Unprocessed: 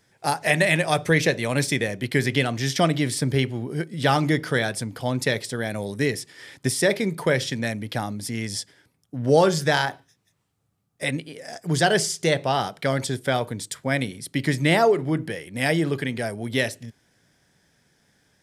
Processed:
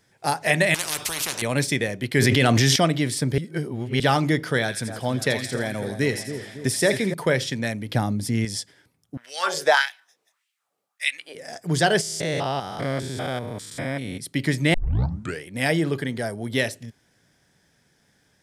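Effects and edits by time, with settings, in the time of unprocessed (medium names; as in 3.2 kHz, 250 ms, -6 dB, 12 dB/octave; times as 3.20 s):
0.74–1.42 s: spectrum-flattening compressor 10:1
2.17–2.76 s: level flattener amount 100%
3.38–4.00 s: reverse
4.60–7.14 s: two-band feedback delay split 1.5 kHz, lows 278 ms, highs 83 ms, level -9 dB
7.89–8.45 s: bass shelf 360 Hz +8.5 dB
9.17–11.35 s: LFO high-pass sine 1.7 Hz 460–2600 Hz
12.01–14.19 s: spectrogram pixelated in time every 200 ms
14.74 s: tape start 0.69 s
15.99–16.55 s: peaking EQ 2.5 kHz -12.5 dB -> -6 dB 0.3 oct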